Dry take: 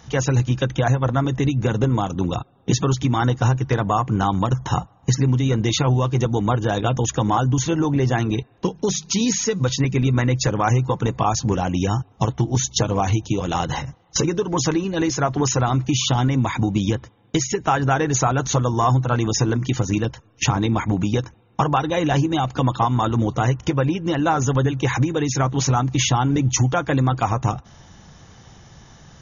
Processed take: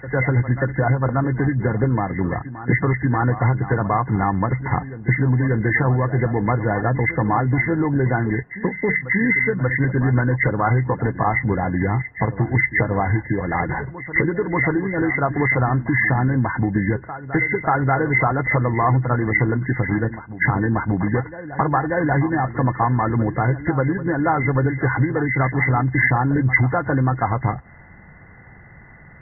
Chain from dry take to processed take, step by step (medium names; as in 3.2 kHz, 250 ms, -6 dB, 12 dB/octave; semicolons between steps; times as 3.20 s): knee-point frequency compression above 1.4 kHz 4:1; reverse echo 586 ms -13.5 dB